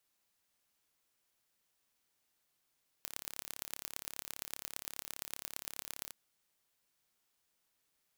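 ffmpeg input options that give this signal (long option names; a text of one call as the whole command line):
ffmpeg -f lavfi -i "aevalsrc='0.266*eq(mod(n,1260),0)*(0.5+0.5*eq(mod(n,5040),0))':duration=3.06:sample_rate=44100" out.wav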